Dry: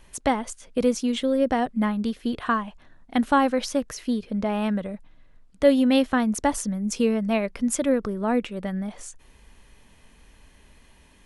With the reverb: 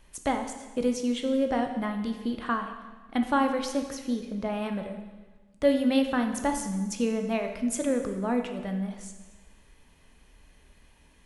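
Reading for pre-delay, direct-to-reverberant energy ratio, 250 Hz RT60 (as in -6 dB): 6 ms, 5.0 dB, 1.3 s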